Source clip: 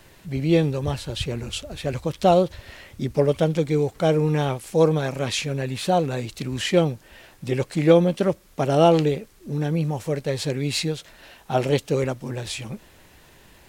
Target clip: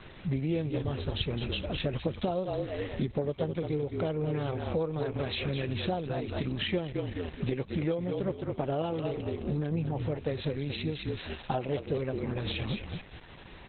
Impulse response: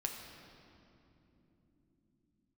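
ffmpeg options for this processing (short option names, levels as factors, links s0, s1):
-filter_complex "[0:a]asplit=5[s0][s1][s2][s3][s4];[s1]adelay=212,afreqshift=-39,volume=0.398[s5];[s2]adelay=424,afreqshift=-78,volume=0.119[s6];[s3]adelay=636,afreqshift=-117,volume=0.0359[s7];[s4]adelay=848,afreqshift=-156,volume=0.0107[s8];[s0][s5][s6][s7][s8]amix=inputs=5:normalize=0,acompressor=threshold=0.0282:ratio=16,volume=1.68" -ar 48000 -c:a libopus -b:a 8k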